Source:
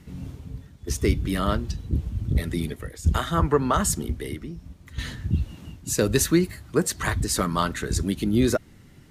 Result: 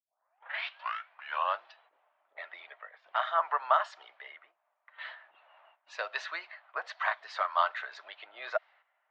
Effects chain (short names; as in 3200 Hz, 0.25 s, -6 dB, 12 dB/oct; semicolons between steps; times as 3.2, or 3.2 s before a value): tape start at the beginning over 1.65 s; Chebyshev high-pass 640 Hz, order 5; gate -56 dBFS, range -9 dB; low-pass opened by the level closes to 1600 Hz, open at -25.5 dBFS; Bessel low-pass 2300 Hz, order 6